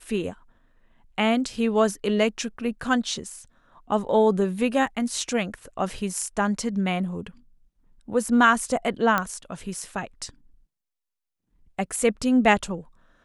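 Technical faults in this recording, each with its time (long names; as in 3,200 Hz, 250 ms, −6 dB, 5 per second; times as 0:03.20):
0:09.18: click −9 dBFS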